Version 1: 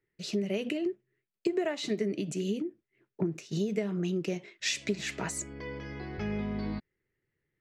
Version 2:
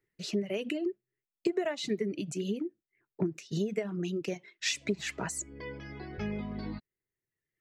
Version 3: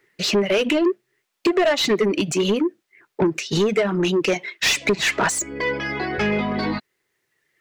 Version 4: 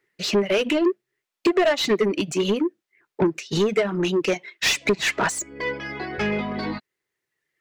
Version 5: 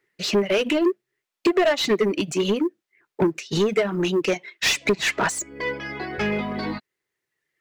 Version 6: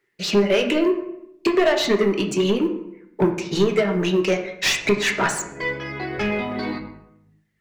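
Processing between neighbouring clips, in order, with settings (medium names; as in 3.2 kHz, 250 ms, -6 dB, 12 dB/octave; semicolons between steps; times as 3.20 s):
reverb removal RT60 1.1 s
overdrive pedal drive 23 dB, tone 3.7 kHz, clips at -16 dBFS; trim +7 dB
upward expansion 1.5:1, over -33 dBFS
short-mantissa float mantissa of 6-bit
reverberation RT60 0.80 s, pre-delay 5 ms, DRR 3.5 dB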